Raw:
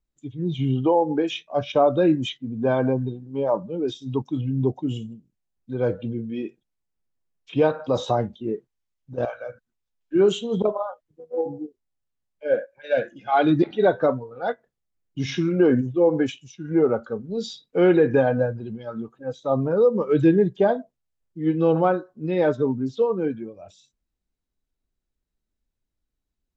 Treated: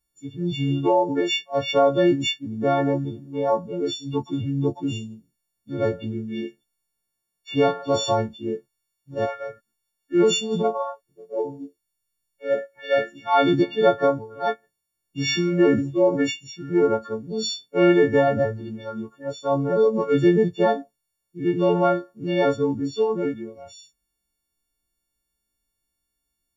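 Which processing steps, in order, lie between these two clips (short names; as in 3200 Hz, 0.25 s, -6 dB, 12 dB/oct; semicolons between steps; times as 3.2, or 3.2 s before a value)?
frequency quantiser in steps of 4 st; 11.49–12.74 bell 440 Hz -> 1300 Hz -4.5 dB 2.1 oct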